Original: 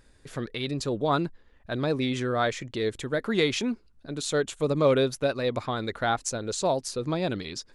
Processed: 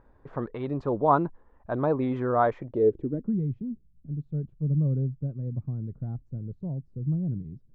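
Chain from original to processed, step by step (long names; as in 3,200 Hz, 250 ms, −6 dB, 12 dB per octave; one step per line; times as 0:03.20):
low-pass filter sweep 980 Hz → 150 Hz, 0:02.52–0:03.40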